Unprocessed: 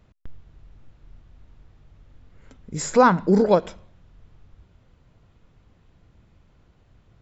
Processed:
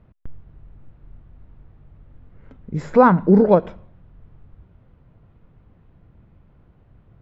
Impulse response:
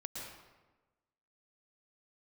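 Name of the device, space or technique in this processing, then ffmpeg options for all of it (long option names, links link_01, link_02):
phone in a pocket: -af "lowpass=3100,equalizer=frequency=150:width_type=o:width=1.1:gain=3,highshelf=frequency=2300:gain=-11,volume=3.5dB"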